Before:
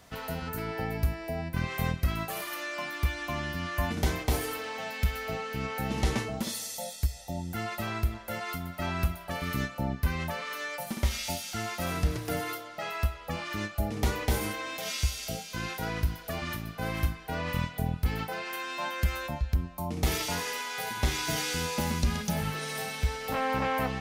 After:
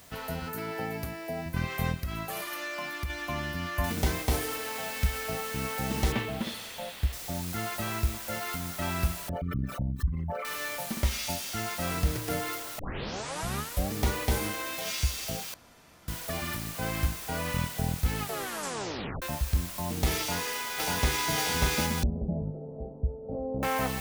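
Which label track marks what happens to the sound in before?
0.460000	1.460000	high-pass filter 150 Hz
2.000000	3.100000	downward compressor 4 to 1, threshold −30 dBFS
3.840000	3.840000	noise floor change −56 dB −41 dB
6.120000	7.130000	high shelf with overshoot 4,400 Hz −9 dB, Q 1.5
9.290000	10.450000	spectral envelope exaggerated exponent 3
12.790000	12.790000	tape start 1.15 s
15.540000	16.080000	fill with room tone
18.170000	18.170000	tape stop 1.05 s
20.200000	21.270000	delay throw 590 ms, feedback 50%, level −0.5 dB
22.030000	23.630000	elliptic low-pass filter 630 Hz, stop band 70 dB

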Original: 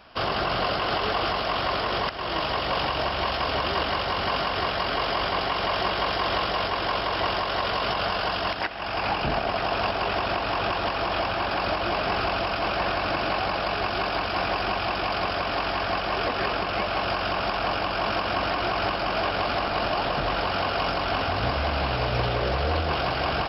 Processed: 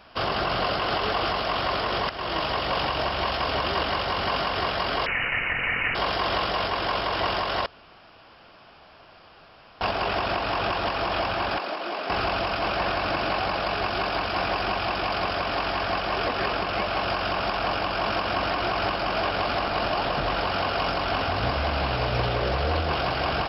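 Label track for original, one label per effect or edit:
5.060000	5.950000	voice inversion scrambler carrier 2,900 Hz
7.660000	9.810000	fill with room tone
11.580000	12.100000	four-pole ladder high-pass 210 Hz, resonance 20%

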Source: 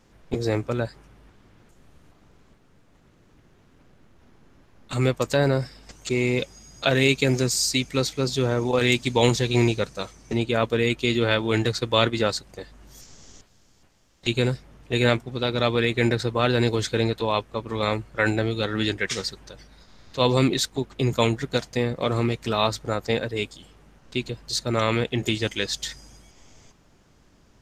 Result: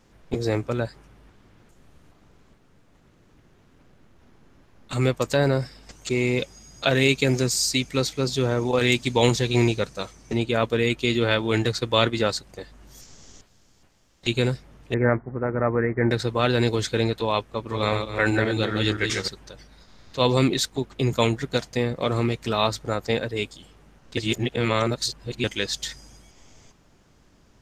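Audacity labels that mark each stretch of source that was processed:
14.940000	16.110000	Butterworth low-pass 2,000 Hz 72 dB per octave
17.530000	19.280000	feedback delay that plays each chunk backwards 131 ms, feedback 42%, level −5 dB
24.170000	25.440000	reverse

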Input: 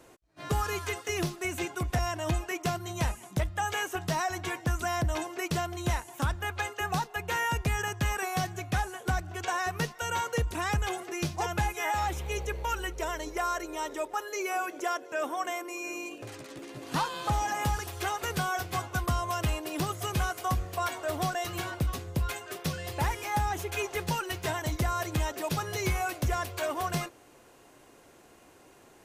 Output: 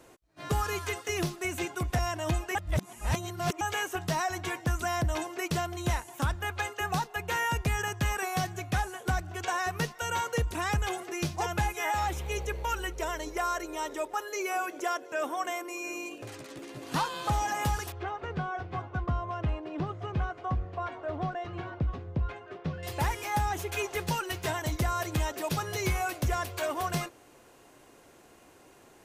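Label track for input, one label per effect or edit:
2.550000	3.610000	reverse
17.920000	22.830000	head-to-tape spacing loss at 10 kHz 40 dB

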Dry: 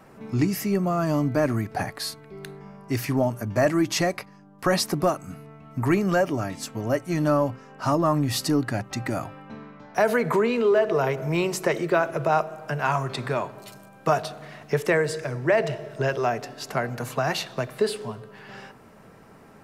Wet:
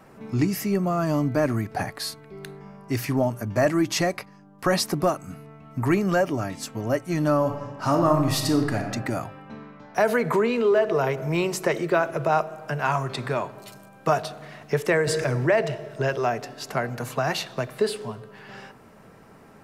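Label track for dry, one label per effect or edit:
7.370000	8.920000	thrown reverb, RT60 1.2 s, DRR 3.5 dB
15.070000	15.510000	envelope flattener amount 50%

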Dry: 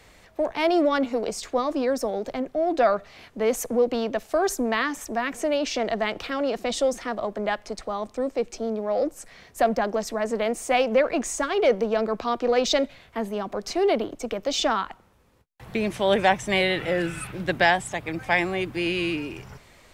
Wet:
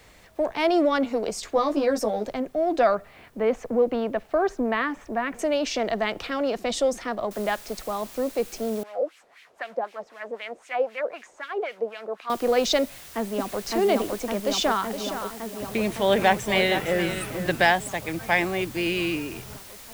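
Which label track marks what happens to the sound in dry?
1.540000	2.260000	double-tracking delay 14 ms −3 dB
2.950000	5.390000	low-pass filter 2,400 Hz
7.310000	7.310000	noise floor change −67 dB −45 dB
8.830000	12.300000	auto-filter band-pass sine 3.9 Hz 500–2,700 Hz
12.820000	13.650000	delay throw 560 ms, feedback 80%, level −1 dB
14.370000	17.670000	single-tap delay 465 ms −9.5 dB

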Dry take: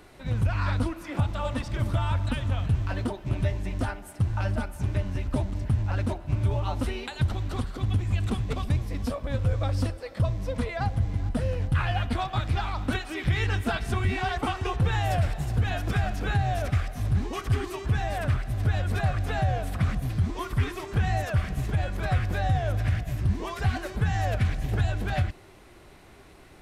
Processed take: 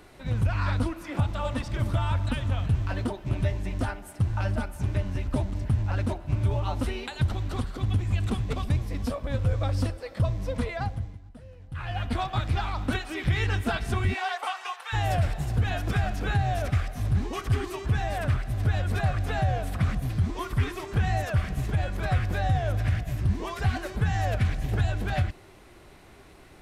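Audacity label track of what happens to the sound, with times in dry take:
10.700000	12.170000	duck −19.5 dB, fades 0.50 s
14.130000	14.920000	high-pass filter 460 Hz → 970 Hz 24 dB per octave

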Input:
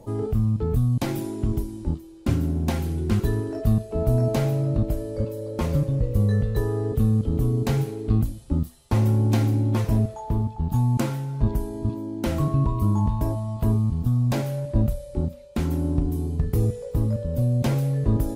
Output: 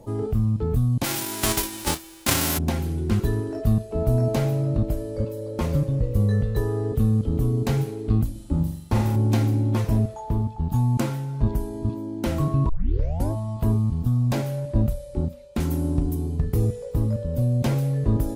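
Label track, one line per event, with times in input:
1.030000	2.570000	spectral envelope flattened exponent 0.3
8.310000	9.160000	flutter between parallel walls apart 7.3 metres, dies away in 0.62 s
12.690000	12.690000	tape start 0.62 s
15.600000	16.150000	high-shelf EQ 5,900 Hz +8 dB

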